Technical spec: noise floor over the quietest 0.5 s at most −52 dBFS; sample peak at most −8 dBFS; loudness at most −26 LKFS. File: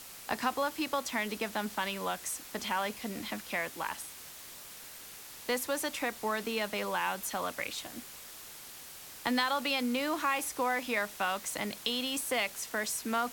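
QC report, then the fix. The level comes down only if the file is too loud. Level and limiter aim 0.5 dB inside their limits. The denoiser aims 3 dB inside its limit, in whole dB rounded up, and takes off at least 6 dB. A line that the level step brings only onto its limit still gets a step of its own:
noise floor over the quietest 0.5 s −48 dBFS: out of spec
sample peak −15.0 dBFS: in spec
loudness −33.5 LKFS: in spec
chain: broadband denoise 7 dB, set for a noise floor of −48 dBFS

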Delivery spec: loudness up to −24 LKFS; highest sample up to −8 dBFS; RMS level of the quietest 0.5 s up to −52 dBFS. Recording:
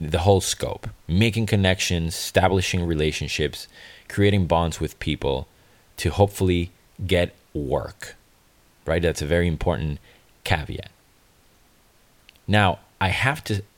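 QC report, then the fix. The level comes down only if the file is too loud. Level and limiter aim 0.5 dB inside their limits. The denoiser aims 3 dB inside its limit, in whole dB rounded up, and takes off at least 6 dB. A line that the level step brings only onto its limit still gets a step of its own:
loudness −23.0 LKFS: out of spec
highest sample −4.5 dBFS: out of spec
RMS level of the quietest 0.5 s −58 dBFS: in spec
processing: level −1.5 dB
brickwall limiter −8.5 dBFS

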